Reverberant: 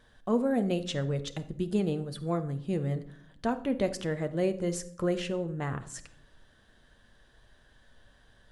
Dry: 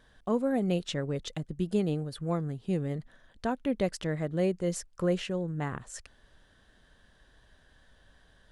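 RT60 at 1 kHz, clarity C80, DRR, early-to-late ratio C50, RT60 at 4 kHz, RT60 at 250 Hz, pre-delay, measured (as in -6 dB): 0.55 s, 18.0 dB, 9.0 dB, 14.0 dB, 0.40 s, 1.1 s, 9 ms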